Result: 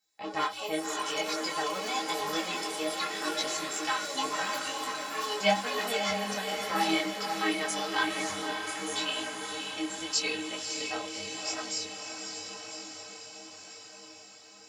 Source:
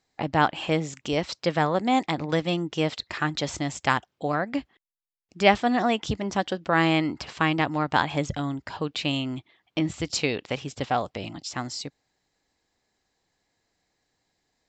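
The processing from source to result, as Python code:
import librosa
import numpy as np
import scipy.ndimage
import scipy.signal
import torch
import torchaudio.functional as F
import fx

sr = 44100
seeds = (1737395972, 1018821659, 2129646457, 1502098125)

y = fx.riaa(x, sr, side='recording')
y = fx.stiff_resonator(y, sr, f0_hz=94.0, decay_s=0.38, stiffness=0.03)
y = fx.echo_pitch(y, sr, ms=94, semitones=5, count=3, db_per_echo=-6.0)
y = fx.echo_diffused(y, sr, ms=580, feedback_pct=69, wet_db=-4.5)
y = fx.detune_double(y, sr, cents=30)
y = F.gain(torch.from_numpy(y), 5.5).numpy()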